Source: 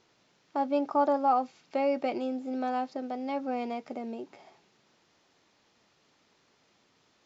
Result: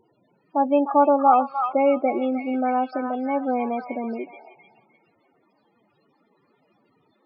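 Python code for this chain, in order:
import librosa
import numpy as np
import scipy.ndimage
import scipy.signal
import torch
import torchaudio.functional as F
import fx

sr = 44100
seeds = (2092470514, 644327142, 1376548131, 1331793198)

y = fx.spec_topn(x, sr, count=16)
y = fx.echo_stepped(y, sr, ms=303, hz=1400.0, octaves=0.7, feedback_pct=70, wet_db=-1.5)
y = F.gain(torch.from_numpy(y), 8.5).numpy()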